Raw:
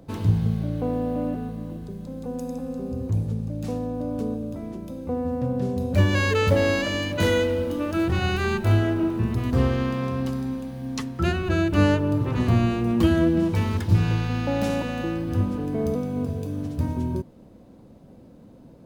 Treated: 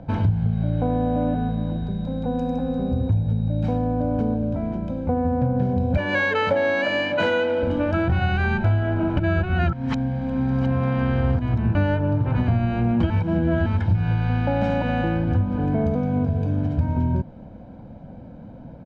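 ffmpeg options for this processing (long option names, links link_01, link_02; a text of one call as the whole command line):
ffmpeg -i in.wav -filter_complex "[0:a]asettb=1/sr,asplit=3[link_01][link_02][link_03];[link_01]atrim=end=0.534[link_04];[link_02]atrim=start=0.53:end=3.77,asetpts=PTS-STARTPTS,afade=type=in:duration=0.004:curve=qsin,afade=type=out:start_time=3.236:duration=0.004:curve=qsin,aeval=exprs='val(0)+0.00224*sin(2*PI*3800*n/s)':channel_layout=same[link_05];[link_03]atrim=start=3.766[link_06];[link_04][link_05]acrossfade=duration=0.004:curve1=hsin:curve2=qsin[link_07];[link_07][link_06]acrossfade=duration=0.004:curve1=qsin:curve2=hsin,asettb=1/sr,asplit=3[link_08][link_09][link_10];[link_08]atrim=end=5.974[link_11];[link_09]atrim=start=5.97:end=7.63,asetpts=PTS-STARTPTS,afade=type=in:duration=0.004:curve=qsin,afade=type=out:start_time=1.656:duration=0.004:curve=qsin,highpass=320[link_12];[link_10]atrim=start=7.626[link_13];[link_11][link_12]acrossfade=duration=0.004:curve1=hsin:curve2=qsin[link_14];[link_14][link_13]acrossfade=duration=0.004:curve1=qsin:curve2=hsin,asplit=5[link_15][link_16][link_17][link_18][link_19];[link_15]atrim=end=9.172[link_20];[link_16]atrim=start=9.168:end=11.752,asetpts=PTS-STARTPTS,areverse[link_21];[link_17]atrim=start=11.748:end=13.102[link_22];[link_18]atrim=start=13.098:end=13.662,asetpts=PTS-STARTPTS,areverse[link_23];[link_19]atrim=start=13.658[link_24];[link_20][link_21]acrossfade=duration=0.004:curve1=hsin:curve2=hsin[link_25];[link_25][link_22]acrossfade=duration=0.004:curve1=hsin:curve2=hsin[link_26];[link_26][link_23]acrossfade=duration=0.004:curve1=hsin:curve2=hsin[link_27];[link_27][link_24]acrossfade=duration=0.004:curve1=hsin:curve2=hsin,lowpass=2200,aecho=1:1:1.3:0.58,acompressor=threshold=-25dB:ratio=6,volume=7.5dB" out.wav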